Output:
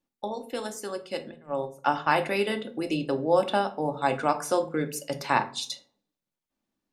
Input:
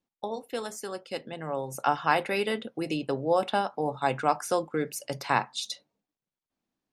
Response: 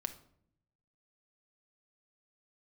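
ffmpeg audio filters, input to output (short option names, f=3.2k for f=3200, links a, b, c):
-filter_complex "[0:a]asettb=1/sr,asplit=3[a][b][c];[a]atrim=end=1.314[d];[b]atrim=start=1.31:end=2.2,asetpts=PTS-STARTPTS,afade=t=in:d=0.004:c=qsin,afade=t=out:st=0.886:d=0.004:c=qsin,agate=range=-20dB:threshold=-32dB:ratio=16:detection=peak[e];[c]atrim=start=2.196[f];[d][e]acrossfade=d=0.004:c1=hsin:c2=qsin[g];[g][f]acrossfade=d=0.004:c1=qsin:c2=hsin[h];[1:a]atrim=start_sample=2205,asetrate=70560,aresample=44100[i];[h][i]afir=irnorm=-1:irlink=0,volume=6dB"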